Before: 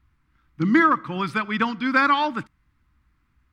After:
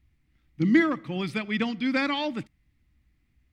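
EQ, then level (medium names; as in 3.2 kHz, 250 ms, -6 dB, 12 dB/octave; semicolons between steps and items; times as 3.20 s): high-order bell 1.2 kHz -13.5 dB 1 oct; -1.5 dB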